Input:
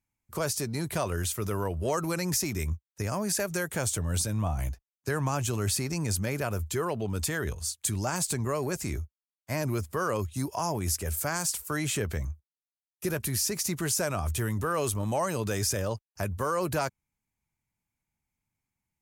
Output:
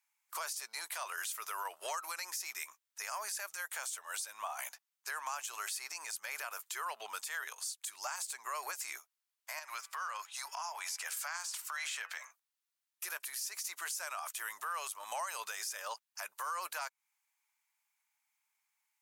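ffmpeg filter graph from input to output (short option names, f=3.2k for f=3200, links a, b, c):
-filter_complex "[0:a]asettb=1/sr,asplit=3[a][b][c];[a]atrim=end=9.594[d];[b]atrim=start=9.59:end=12.31,asetpts=PTS-STARTPTS,afade=t=in:d=0.004:c=qsin,afade=t=out:st=2.716:d=0.004:c=qsin,acrossover=split=540 7100:gain=0.0794 1 0.251[e][f][g];[e][f][g]amix=inputs=3:normalize=0,acompressor=threshold=-38dB:ratio=10:attack=3.2:release=140:knee=1:detection=peak,bandreject=f=166.2:t=h:w=4,bandreject=f=332.4:t=h:w=4,bandreject=f=498.6:t=h:w=4,bandreject=f=664.8:t=h:w=4,bandreject=f=831:t=h:w=4,bandreject=f=997.2:t=h:w=4,bandreject=f=1.1634k:t=h:w=4,bandreject=f=1.3296k:t=h:w=4,bandreject=f=1.4958k:t=h:w=4,bandreject=f=1.662k:t=h:w=4,bandreject=f=1.8282k:t=h:w=4,bandreject=f=1.9944k:t=h:w=4,bandreject=f=2.1606k:t=h:w=4,bandreject=f=2.3268k:t=h:w=4,bandreject=f=2.493k:t=h:w=4,bandreject=f=2.6592k:t=h:w=4,bandreject=f=2.8254k:t=h:w=4,bandreject=f=2.9916k:t=h:w=4[h];[c]atrim=start=12.306[i];[d][h]acrossfade=d=0.004:c1=hsin:c2=qsin[j];[j][i]acrossfade=d=0.004:c1=qsin:c2=hsin,highpass=f=900:w=0.5412,highpass=f=900:w=1.3066,acompressor=threshold=-41dB:ratio=6,alimiter=level_in=11.5dB:limit=-24dB:level=0:latency=1:release=41,volume=-11.5dB,volume=6.5dB"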